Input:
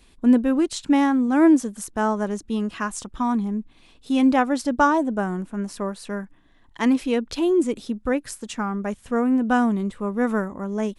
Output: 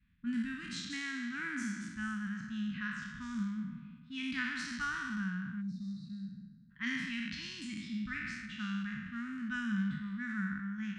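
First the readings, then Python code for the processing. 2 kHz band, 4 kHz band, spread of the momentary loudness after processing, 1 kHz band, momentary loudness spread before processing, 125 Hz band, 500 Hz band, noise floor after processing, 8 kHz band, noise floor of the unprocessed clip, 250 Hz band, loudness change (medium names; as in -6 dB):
-6.0 dB, -6.5 dB, 7 LU, -22.0 dB, 11 LU, no reading, under -40 dB, -57 dBFS, -15.0 dB, -55 dBFS, -17.0 dB, -16.0 dB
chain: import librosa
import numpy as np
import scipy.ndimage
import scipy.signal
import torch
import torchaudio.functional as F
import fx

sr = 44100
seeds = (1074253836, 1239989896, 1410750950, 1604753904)

y = fx.spec_trails(x, sr, decay_s=1.66)
y = fx.env_lowpass(y, sr, base_hz=1200.0, full_db=-13.0)
y = scipy.signal.sosfilt(scipy.signal.butter(2, 70.0, 'highpass', fs=sr, output='sos'), y)
y = fx.spec_box(y, sr, start_s=5.61, length_s=1.09, low_hz=310.0, high_hz=3600.0, gain_db=-25)
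y = scipy.signal.sosfilt(scipy.signal.ellip(3, 1.0, 80, [190.0, 1600.0], 'bandstop', fs=sr, output='sos'), y)
y = fx.air_absorb(y, sr, metres=99.0)
y = fx.rev_schroeder(y, sr, rt60_s=0.31, comb_ms=30, drr_db=12.5)
y = F.gain(torch.from_numpy(y), -8.5).numpy()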